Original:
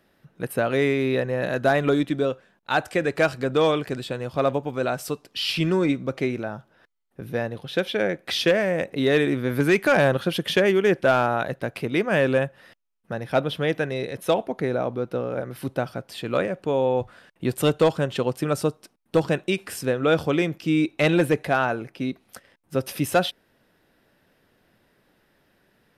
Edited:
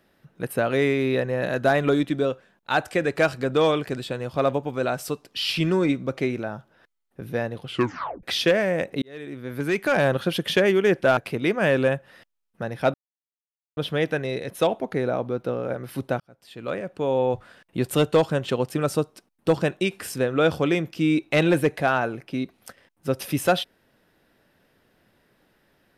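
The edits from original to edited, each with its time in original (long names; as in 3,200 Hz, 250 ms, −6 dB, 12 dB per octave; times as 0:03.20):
0:07.64: tape stop 0.59 s
0:09.02–0:10.26: fade in
0:11.17–0:11.67: remove
0:13.44: splice in silence 0.83 s
0:15.87–0:16.89: fade in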